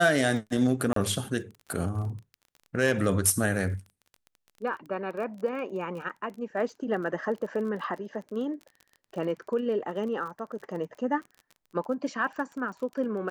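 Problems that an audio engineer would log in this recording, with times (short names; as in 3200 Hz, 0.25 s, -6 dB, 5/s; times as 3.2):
crackle 26/s -38 dBFS
0.93–0.96 gap 33 ms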